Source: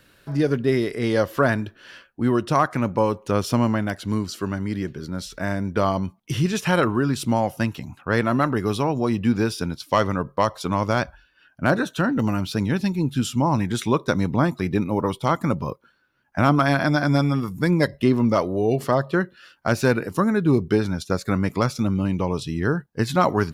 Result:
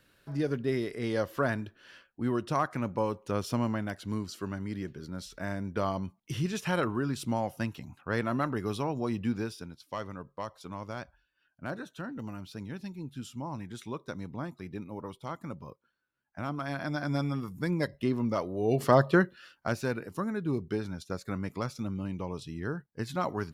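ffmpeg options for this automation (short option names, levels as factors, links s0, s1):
-af "volume=2.51,afade=t=out:st=9.22:d=0.46:silence=0.398107,afade=t=in:st=16.57:d=0.66:silence=0.446684,afade=t=in:st=18.57:d=0.45:silence=0.298538,afade=t=out:st=19.02:d=0.78:silence=0.237137"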